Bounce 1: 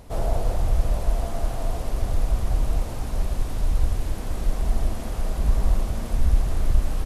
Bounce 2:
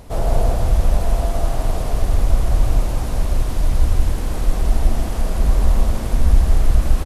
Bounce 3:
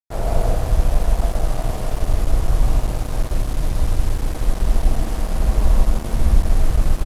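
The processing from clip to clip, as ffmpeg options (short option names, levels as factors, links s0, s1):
-af "aecho=1:1:158:0.631,volume=1.78"
-af "aecho=1:1:107.9|151.6:0.355|0.355,aeval=exprs='sgn(val(0))*max(abs(val(0))-0.0447,0)':c=same,volume=0.891"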